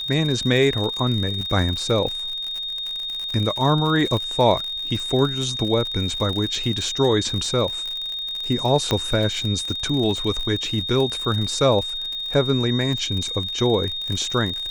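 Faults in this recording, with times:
crackle 65 per s -26 dBFS
whine 3.7 kHz -26 dBFS
8.91 s: pop -6 dBFS

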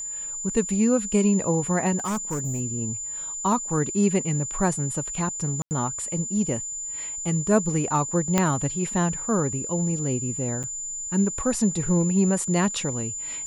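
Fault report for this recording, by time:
whine 7.1 kHz -30 dBFS
1.98–2.61 s: clipped -23.5 dBFS
5.62–5.71 s: dropout 89 ms
8.38 s: pop -6 dBFS
10.63–10.64 s: dropout 7.3 ms

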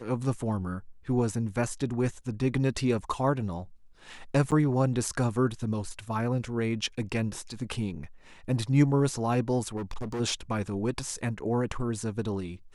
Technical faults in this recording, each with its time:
4.51–4.52 s: dropout 7.9 ms
9.76–10.21 s: clipped -30 dBFS

